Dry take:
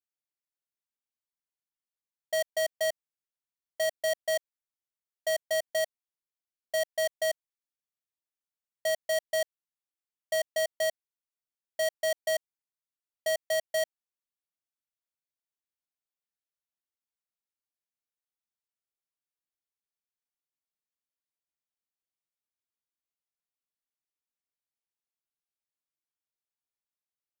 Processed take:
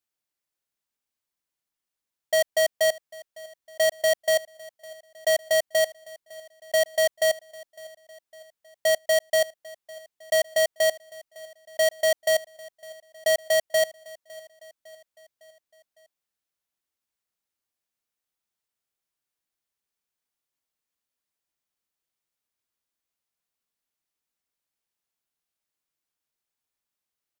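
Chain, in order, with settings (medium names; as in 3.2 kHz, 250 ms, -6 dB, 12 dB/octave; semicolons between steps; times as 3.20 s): feedback delay 556 ms, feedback 53%, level -21 dB; trim +7 dB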